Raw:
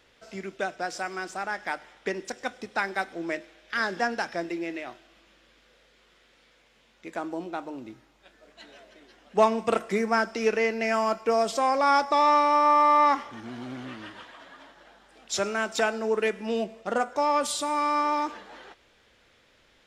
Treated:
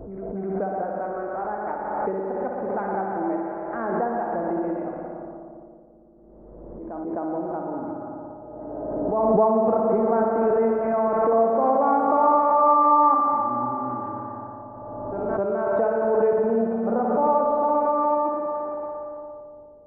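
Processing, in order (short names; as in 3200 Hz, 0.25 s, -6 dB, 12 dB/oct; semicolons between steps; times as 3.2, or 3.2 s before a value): regenerating reverse delay 0.142 s, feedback 70%, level -9.5 dB; LPF 1000 Hz 24 dB/oct; spring tank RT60 3.1 s, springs 57 ms, chirp 30 ms, DRR 0.5 dB; in parallel at -3 dB: compressor, threshold -34 dBFS, peak gain reduction 18 dB; on the sum: low-pass opened by the level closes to 390 Hz, open at -23.5 dBFS; on a send: reverse echo 0.259 s -18 dB; on the sum: backwards sustainer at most 26 dB/s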